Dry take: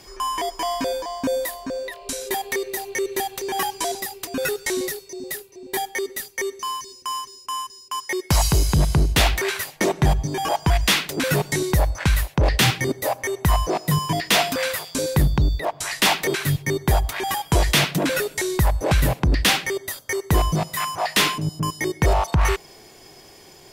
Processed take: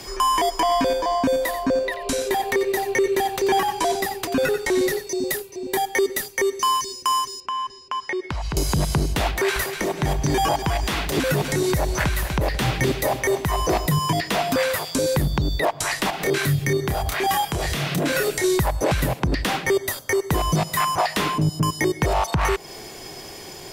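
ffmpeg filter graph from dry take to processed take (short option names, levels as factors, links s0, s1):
-filter_complex "[0:a]asettb=1/sr,asplit=3[s0][s1][s2];[s0]atrim=end=0.604[s3];[s1]atrim=start=0.6:end=5.07,asetpts=PTS-STARTPTS,afade=t=in:d=0.004:c=qsin,afade=t=out:st=4.466:d=0.004:c=qsin,highshelf=f=3900:g=-10,aecho=1:1:89:0.224,atrim=end_sample=197127[s4];[s2]atrim=start=5.066[s5];[s3][s4]acrossfade=d=0.004:c1=hsin:c2=qsin[s6];[s6][s5]acrossfade=d=0.004:c1=qsin:c2=hsin,asettb=1/sr,asplit=3[s7][s8][s9];[s7]atrim=end=7.404[s10];[s8]atrim=start=7.4:end=8.57,asetpts=PTS-STARTPTS,afade=t=in:d=0.004:c=qsin,afade=t=out:st=1.166:d=0.004:c=qsin,lowpass=3000,acompressor=threshold=0.0251:ratio=10:attack=3.2:release=140:knee=1:detection=peak[s11];[s9]atrim=start=8.566[s12];[s10][s11]acrossfade=d=0.004:c1=hsin:c2=qsin[s13];[s13][s12]acrossfade=d=0.004:c1=qsin:c2=hsin,asettb=1/sr,asplit=3[s14][s15][s16];[s14]atrim=end=9.314[s17];[s15]atrim=start=9.31:end=13.86,asetpts=PTS-STARTPTS,afade=t=in:d=0.004:c=qsin,afade=t=out:st=4.546:d=0.004:c=qsin,acompressor=threshold=0.0708:ratio=2:attack=3.2:release=140:knee=1:detection=peak,aecho=1:1:245|490|735|980:0.251|0.103|0.0422|0.0173,atrim=end_sample=200655[s18];[s16]atrim=start=13.856[s19];[s17][s18]acrossfade=d=0.004:c1=hsin:c2=qsin[s20];[s20][s19]acrossfade=d=0.004:c1=qsin:c2=hsin,asettb=1/sr,asplit=3[s21][s22][s23];[s21]atrim=end=16.104[s24];[s22]atrim=start=16.1:end=18.44,asetpts=PTS-STARTPTS,afade=t=in:d=0.004:c=qsin,afade=t=out:st=2.336:d=0.004:c=qsin,bandreject=f=930:w=9.6,asplit=2[s25][s26];[s26]adelay=28,volume=0.75[s27];[s25][s27]amix=inputs=2:normalize=0,atrim=end_sample=103194,acompressor=threshold=0.0562:ratio=5:attack=3.2:release=140:knee=1:detection=peak[s28];[s23]atrim=start=18.436[s29];[s24][s28]acrossfade=d=0.004:c1=hsin:c2=qsin[s30];[s30][s29]acrossfade=d=0.004:c1=qsin:c2=hsin,acrossover=split=130|1400[s31][s32][s33];[s31]acompressor=threshold=0.0316:ratio=4[s34];[s32]acompressor=threshold=0.0562:ratio=4[s35];[s33]acompressor=threshold=0.0224:ratio=4[s36];[s34][s35][s36]amix=inputs=3:normalize=0,alimiter=limit=0.1:level=0:latency=1:release=285,volume=2.82"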